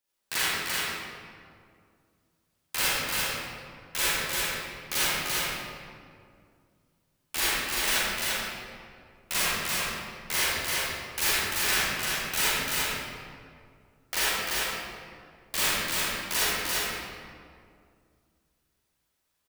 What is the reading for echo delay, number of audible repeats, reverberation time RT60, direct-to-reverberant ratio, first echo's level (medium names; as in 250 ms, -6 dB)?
343 ms, 1, 2.2 s, -11.5 dB, -3.0 dB